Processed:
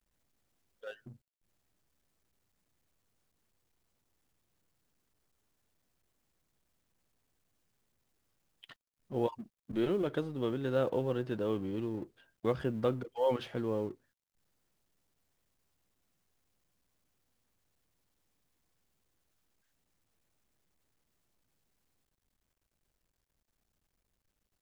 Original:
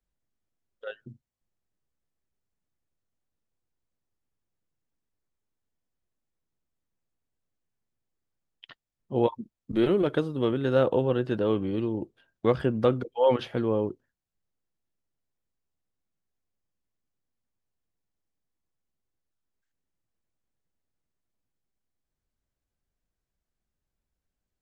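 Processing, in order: G.711 law mismatch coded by mu; gain -8.5 dB

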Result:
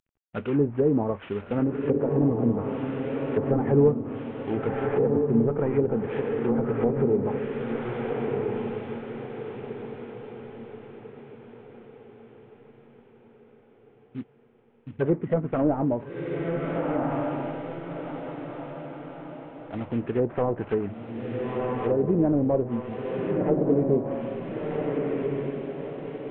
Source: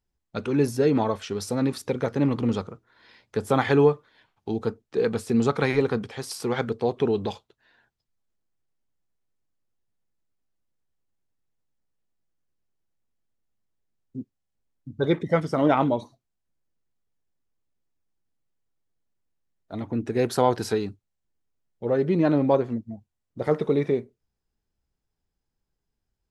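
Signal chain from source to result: CVSD 16 kbps; diffused feedback echo 1.363 s, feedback 43%, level -3 dB; treble ducked by the level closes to 650 Hz, closed at -19 dBFS

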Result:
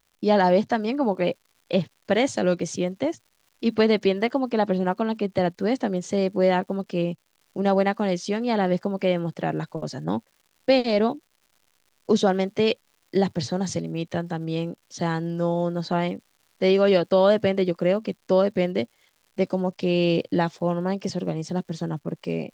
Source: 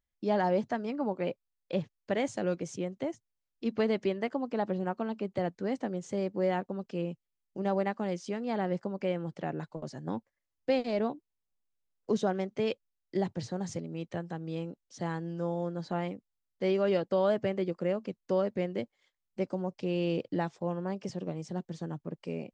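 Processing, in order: dynamic EQ 4000 Hz, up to +6 dB, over -58 dBFS, Q 1.3; crackle 240/s -57 dBFS; gain +9 dB

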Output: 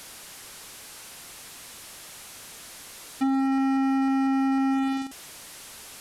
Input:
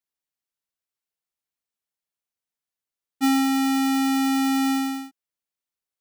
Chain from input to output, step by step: delta modulation 64 kbps, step -40 dBFS; compressor 6:1, threshold -27 dBFS, peak gain reduction 7.5 dB; gain +3.5 dB

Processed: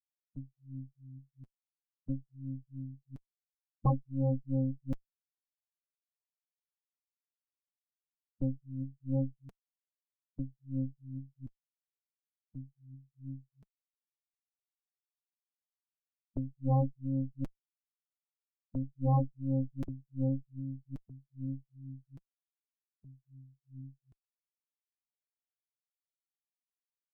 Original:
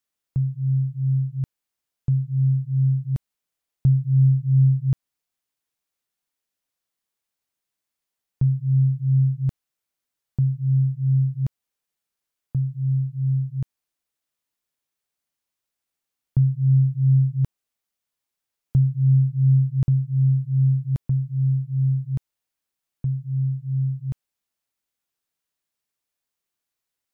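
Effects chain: per-bin expansion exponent 3; flange 1.7 Hz, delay 2.6 ms, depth 5.8 ms, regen +23%; added harmonics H 8 -9 dB, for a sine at -12 dBFS; gain -8.5 dB

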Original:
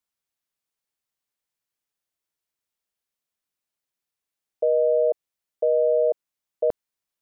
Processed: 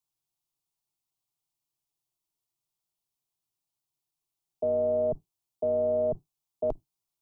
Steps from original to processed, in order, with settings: octaver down 1 oct, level +3 dB; fixed phaser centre 340 Hz, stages 8

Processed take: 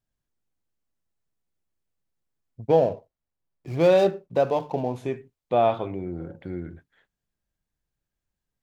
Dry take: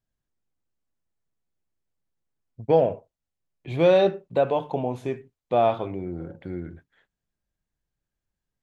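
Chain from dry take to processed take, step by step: 2.68–4.96 median filter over 15 samples

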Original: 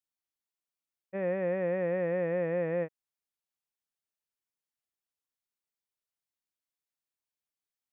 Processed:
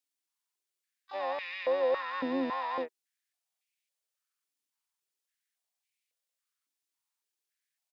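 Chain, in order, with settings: harmoniser -12 st -2 dB, +7 st -11 dB, +12 st -9 dB; tilt shelf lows -6.5 dB, about 1500 Hz; stepped high-pass 3.6 Hz 280–2300 Hz; gain -3.5 dB

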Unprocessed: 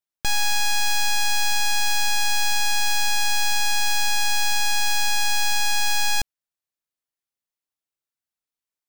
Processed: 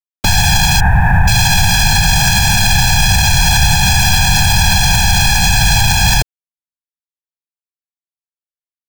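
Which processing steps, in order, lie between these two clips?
0.8–1.28 steep low-pass 1900 Hz 36 dB/oct; whisperiser; bit-crush 9-bit; maximiser +18 dB; gain -1 dB

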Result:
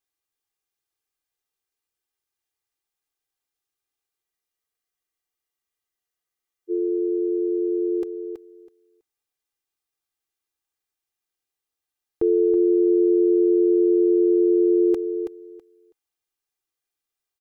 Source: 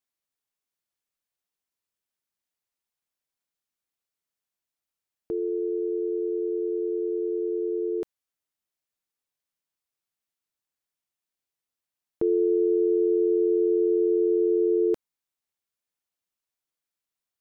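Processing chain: comb 2.5 ms; on a send: feedback echo 0.326 s, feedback 17%, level -8 dB; on the sum: spectral freeze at 4.24, 2.45 s

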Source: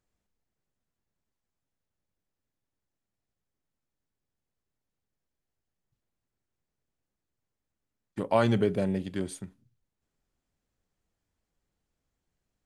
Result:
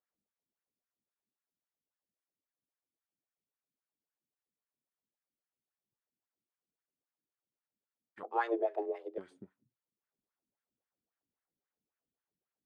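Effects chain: 8.23–9.18 frequency shift +230 Hz; wah 3.7 Hz 220–1700 Hz, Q 2.3; gain -2.5 dB

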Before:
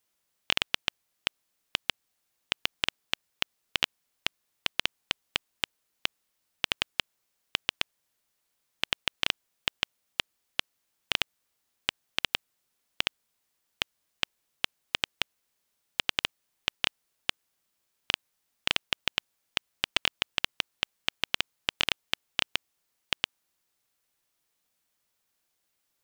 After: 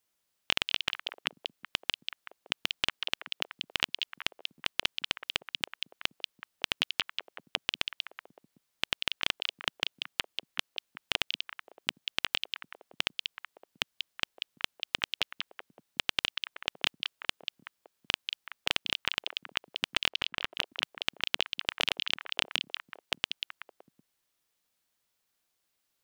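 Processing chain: 20.09–20.53 high shelf 3600 Hz -11.5 dB; delay with a stepping band-pass 0.188 s, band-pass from 3700 Hz, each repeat -1.4 oct, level -3 dB; gain -2 dB

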